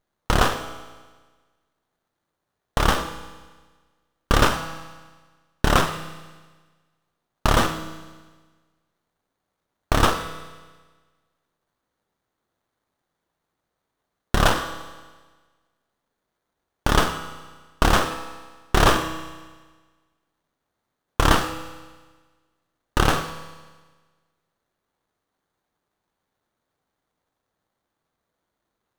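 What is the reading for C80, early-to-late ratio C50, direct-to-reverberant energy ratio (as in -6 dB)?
11.5 dB, 10.5 dB, 8.5 dB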